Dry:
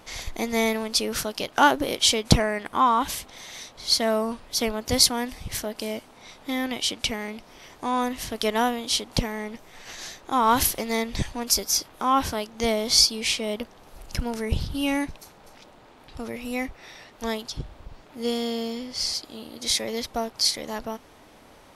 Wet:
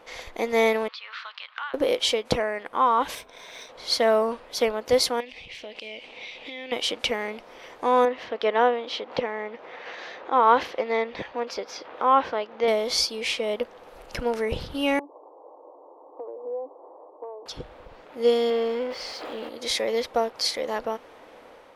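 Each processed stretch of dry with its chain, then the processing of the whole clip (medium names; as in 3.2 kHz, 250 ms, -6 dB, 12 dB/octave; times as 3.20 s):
0.88–1.74 s: Chebyshev band-pass 1.1–4.1 kHz, order 3 + compression 4:1, threshold -35 dBFS
3.15–3.69 s: companding laws mixed up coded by A + rippled EQ curve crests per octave 1.6, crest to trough 8 dB
5.20–6.72 s: low-pass 4.3 kHz + resonant high shelf 1.9 kHz +9.5 dB, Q 3 + compression 8:1, threshold -36 dBFS
8.05–12.68 s: distance through air 230 m + upward compressor, threshold -33 dBFS + high-pass 320 Hz 6 dB/octave
14.99–17.46 s: Chebyshev band-pass 290–1100 Hz, order 5 + compression 10:1, threshold -39 dBFS
18.50–19.49 s: jump at every zero crossing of -33.5 dBFS + tone controls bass -6 dB, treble -12 dB
whole clip: peaking EQ 500 Hz +9.5 dB 0.23 oct; level rider gain up to 4 dB; tone controls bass -13 dB, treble -12 dB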